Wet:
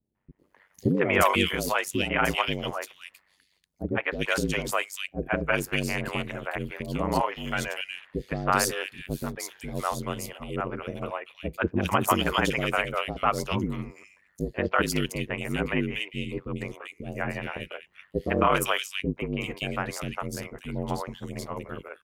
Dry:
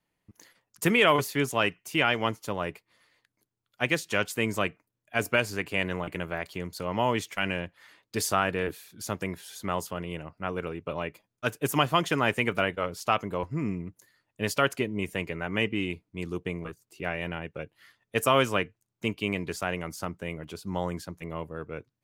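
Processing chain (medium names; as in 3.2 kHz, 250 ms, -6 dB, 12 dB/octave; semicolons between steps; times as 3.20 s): three bands offset in time lows, mids, highs 150/390 ms, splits 510/2400 Hz; ring modulator 48 Hz; trim +5.5 dB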